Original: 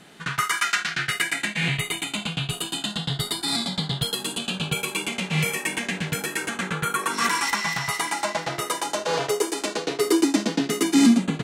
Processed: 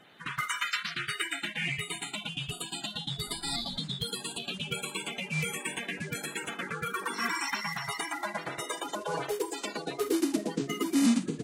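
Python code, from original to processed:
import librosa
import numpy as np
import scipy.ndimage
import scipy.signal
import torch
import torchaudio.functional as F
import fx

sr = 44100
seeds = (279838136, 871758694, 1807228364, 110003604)

y = fx.spec_quant(x, sr, step_db=30)
y = fx.dmg_noise_colour(y, sr, seeds[0], colour='brown', level_db=-41.0, at=(3.26, 3.77), fade=0.02)
y = F.gain(torch.from_numpy(y), -7.5).numpy()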